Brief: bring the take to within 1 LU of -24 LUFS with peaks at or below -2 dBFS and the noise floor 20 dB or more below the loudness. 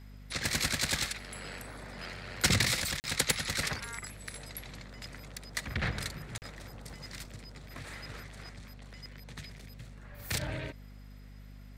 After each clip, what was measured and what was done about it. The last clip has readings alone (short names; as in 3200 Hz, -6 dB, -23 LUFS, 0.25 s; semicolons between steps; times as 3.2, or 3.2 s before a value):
dropouts 2; longest dropout 39 ms; hum 50 Hz; harmonics up to 250 Hz; hum level -46 dBFS; loudness -33.5 LUFS; peak -15.5 dBFS; loudness target -24.0 LUFS
-> interpolate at 3/6.38, 39 ms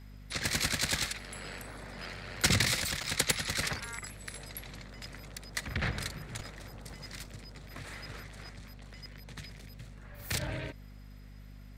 dropouts 0; hum 50 Hz; harmonics up to 250 Hz; hum level -46 dBFS
-> notches 50/100/150/200/250 Hz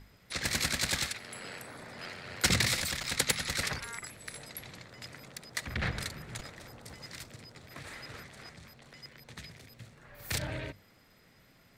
hum none; loudness -33.5 LUFS; peak -15.0 dBFS; loudness target -24.0 LUFS
-> gain +9.5 dB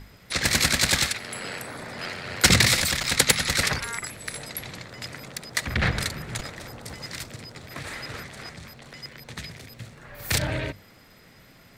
loudness -24.0 LUFS; peak -5.5 dBFS; noise floor -53 dBFS